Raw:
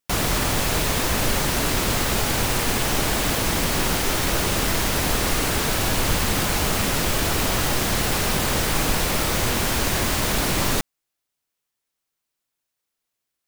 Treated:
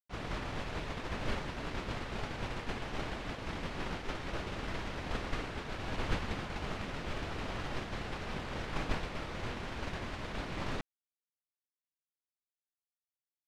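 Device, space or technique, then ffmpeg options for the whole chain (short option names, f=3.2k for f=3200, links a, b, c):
hearing-loss simulation: -af "lowpass=3.1k,agate=range=-33dB:threshold=-10dB:ratio=3:detection=peak,volume=3dB"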